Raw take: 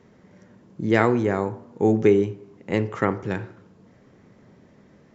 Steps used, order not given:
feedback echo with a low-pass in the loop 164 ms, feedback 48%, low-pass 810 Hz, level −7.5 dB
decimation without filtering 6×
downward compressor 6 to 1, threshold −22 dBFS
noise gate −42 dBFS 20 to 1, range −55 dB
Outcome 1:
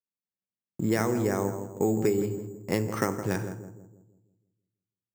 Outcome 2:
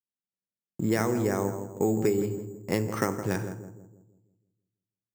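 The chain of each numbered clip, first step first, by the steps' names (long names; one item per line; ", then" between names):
noise gate, then downward compressor, then feedback echo with a low-pass in the loop, then decimation without filtering
downward compressor, then noise gate, then feedback echo with a low-pass in the loop, then decimation without filtering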